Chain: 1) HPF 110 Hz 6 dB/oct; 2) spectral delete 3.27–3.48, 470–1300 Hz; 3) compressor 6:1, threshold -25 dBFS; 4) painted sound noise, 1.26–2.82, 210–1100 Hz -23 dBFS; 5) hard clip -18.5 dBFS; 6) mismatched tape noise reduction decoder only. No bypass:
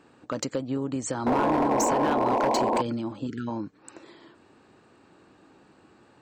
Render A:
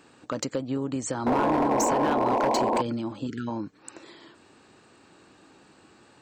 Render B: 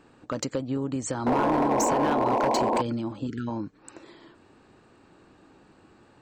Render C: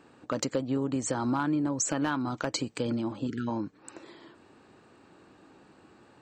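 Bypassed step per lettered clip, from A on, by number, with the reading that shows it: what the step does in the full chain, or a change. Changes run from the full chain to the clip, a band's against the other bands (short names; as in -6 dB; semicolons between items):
6, momentary loudness spread change +2 LU; 1, 125 Hz band +2.0 dB; 4, 1 kHz band -9.5 dB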